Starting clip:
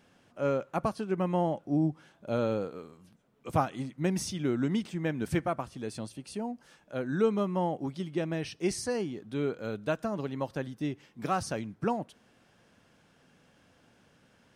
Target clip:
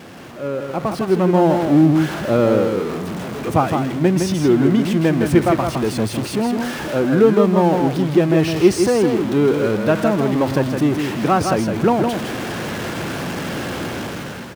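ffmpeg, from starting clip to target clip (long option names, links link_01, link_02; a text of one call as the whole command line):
ffmpeg -i in.wav -filter_complex "[0:a]aeval=exprs='val(0)+0.5*0.0266*sgn(val(0))':channel_layout=same,highpass=60,highshelf=frequency=3500:gain=-9.5,dynaudnorm=framelen=360:gausssize=5:maxgain=13dB,equalizer=frequency=350:width_type=o:width=0.35:gain=5.5,asplit=2[link_01][link_02];[link_02]aecho=0:1:161:0.531[link_03];[link_01][link_03]amix=inputs=2:normalize=0,volume=-1dB" out.wav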